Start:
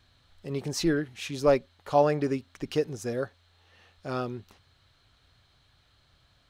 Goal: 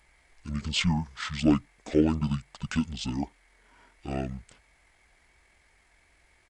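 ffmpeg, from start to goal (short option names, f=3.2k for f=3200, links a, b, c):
-af "aemphasis=mode=production:type=50fm,asetrate=23361,aresample=44100,atempo=1.88775"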